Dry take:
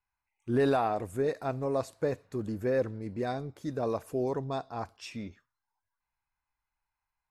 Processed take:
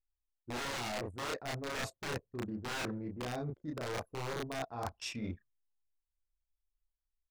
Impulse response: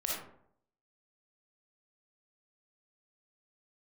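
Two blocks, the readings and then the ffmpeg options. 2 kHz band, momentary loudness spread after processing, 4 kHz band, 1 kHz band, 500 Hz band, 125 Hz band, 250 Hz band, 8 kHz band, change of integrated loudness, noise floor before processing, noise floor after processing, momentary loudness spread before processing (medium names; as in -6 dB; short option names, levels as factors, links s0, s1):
+1.5 dB, 4 LU, +6.0 dB, -6.5 dB, -11.5 dB, -6.0 dB, -7.5 dB, +6.5 dB, -7.5 dB, under -85 dBFS, under -85 dBFS, 13 LU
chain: -filter_complex "[0:a]aeval=exprs='(mod(16.8*val(0)+1,2)-1)/16.8':c=same,acrossover=split=8500[s0][s1];[s1]acompressor=threshold=0.00631:ratio=4:attack=1:release=60[s2];[s0][s2]amix=inputs=2:normalize=0,asplit=2[s3][s4];[s4]adelay=33,volume=0.794[s5];[s3][s5]amix=inputs=2:normalize=0,areverse,acompressor=threshold=0.00891:ratio=16,areverse,anlmdn=0.00158,volume=1.88"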